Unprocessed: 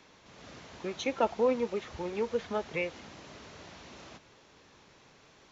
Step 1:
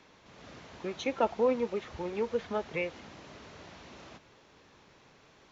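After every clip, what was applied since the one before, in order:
high-shelf EQ 5,700 Hz −7 dB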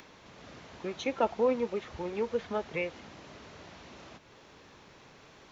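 upward compression, threshold −48 dBFS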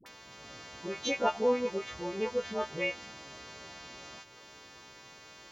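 every partial snapped to a pitch grid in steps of 2 semitones
all-pass dispersion highs, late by 62 ms, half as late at 680 Hz

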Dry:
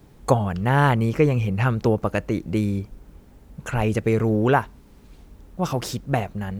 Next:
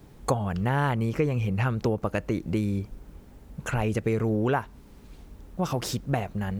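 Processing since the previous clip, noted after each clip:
downward compressor 2.5 to 1, threshold −24 dBFS, peak gain reduction 9 dB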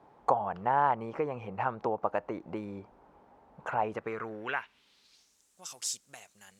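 band-pass filter sweep 850 Hz → 7,500 Hz, 0:03.87–0:05.44
level +5.5 dB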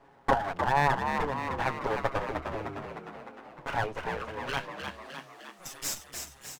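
lower of the sound and its delayed copy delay 7.3 ms
echo with shifted repeats 305 ms, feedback 59%, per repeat +66 Hz, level −6 dB
level +2.5 dB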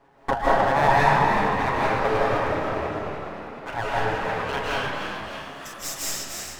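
convolution reverb RT60 1.7 s, pre-delay 120 ms, DRR −7.5 dB

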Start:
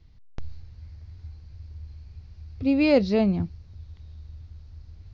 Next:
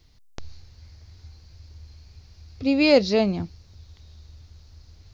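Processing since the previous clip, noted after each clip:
bass and treble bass −8 dB, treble +11 dB
level +3.5 dB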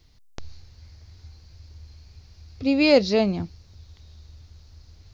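no processing that can be heard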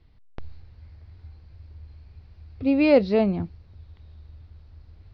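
high-frequency loss of the air 400 metres
level +1 dB

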